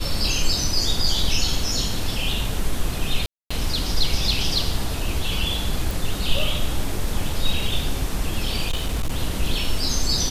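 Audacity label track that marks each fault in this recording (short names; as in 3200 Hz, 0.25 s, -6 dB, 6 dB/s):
3.260000	3.500000	gap 0.245 s
5.910000	5.910000	pop
8.670000	9.180000	clipped -18.5 dBFS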